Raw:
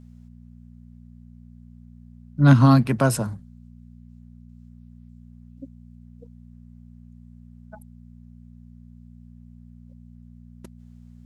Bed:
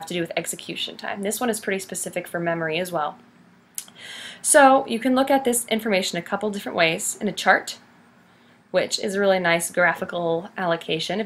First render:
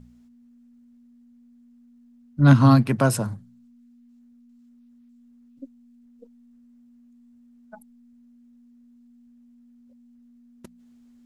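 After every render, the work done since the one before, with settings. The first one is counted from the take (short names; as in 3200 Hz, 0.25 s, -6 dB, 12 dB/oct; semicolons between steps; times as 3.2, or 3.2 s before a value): de-hum 60 Hz, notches 3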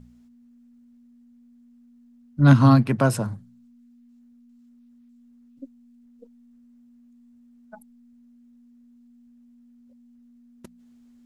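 2.69–3.34 high shelf 5200 Hz -5.5 dB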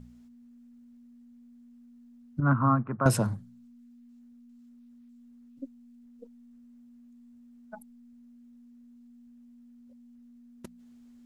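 2.4–3.06 ladder low-pass 1400 Hz, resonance 65%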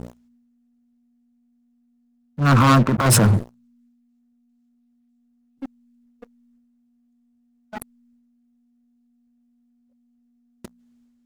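sample leveller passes 5; transient shaper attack -12 dB, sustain +5 dB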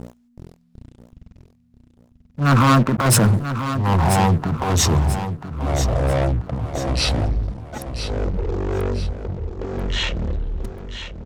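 echoes that change speed 0.376 s, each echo -6 st, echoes 3; on a send: feedback echo 0.988 s, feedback 42%, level -10 dB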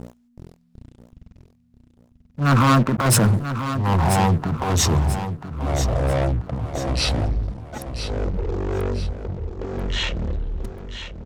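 gain -1.5 dB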